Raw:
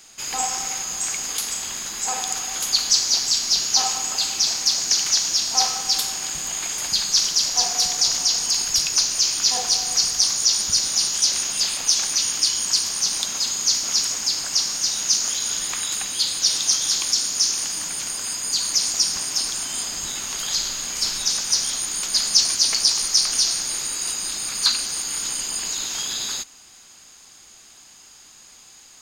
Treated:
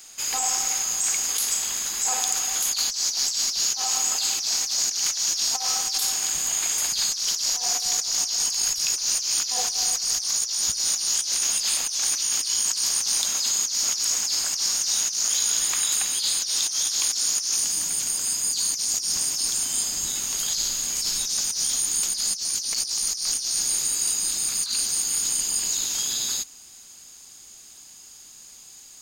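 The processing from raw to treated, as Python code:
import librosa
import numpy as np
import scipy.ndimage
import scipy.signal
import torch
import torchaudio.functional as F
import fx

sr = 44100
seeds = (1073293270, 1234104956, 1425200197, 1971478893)

y = fx.high_shelf(x, sr, hz=6800.0, db=9.0)
y = fx.over_compress(y, sr, threshold_db=-21.0, ratio=-1.0)
y = fx.peak_eq(y, sr, hz=fx.steps((0.0, 110.0), (17.56, 1400.0)), db=-5.0, octaves=2.7)
y = y * librosa.db_to_amplitude(-3.5)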